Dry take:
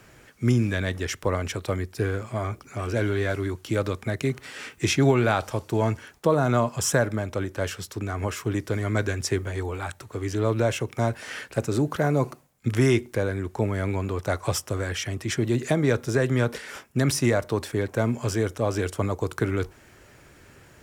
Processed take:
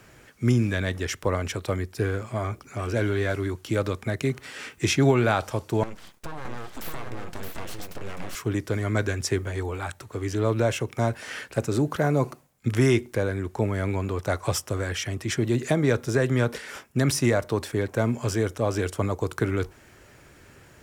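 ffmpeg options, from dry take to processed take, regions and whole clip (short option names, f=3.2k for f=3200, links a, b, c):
-filter_complex "[0:a]asettb=1/sr,asplit=3[a][b][c];[a]atrim=end=5.834[d];[b]atrim=start=5.83:end=8.35,asetpts=PTS-STARTPTS,afade=t=in:d=0.004:c=qsin,afade=t=out:st=2.516:d=0.004:c=qsin,aeval=exprs='abs(val(0))':c=same,acompressor=threshold=-29dB:ratio=12:attack=3.2:release=140:knee=1:detection=peak,aecho=1:1:620:0.631,atrim=end_sample=111132[e];[c]atrim=start=8.346[f];[d][e]acrossfade=d=0.004:c1=hsin:c2=qsin[g];[g][f]acrossfade=d=0.004:c1=qsin:c2=hsin"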